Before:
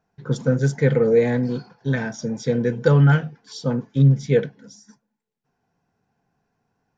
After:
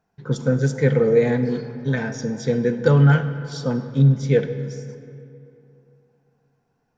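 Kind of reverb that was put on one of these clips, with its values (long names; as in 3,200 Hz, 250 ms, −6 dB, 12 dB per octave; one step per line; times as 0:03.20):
comb and all-pass reverb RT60 2.8 s, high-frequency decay 0.6×, pre-delay 10 ms, DRR 10 dB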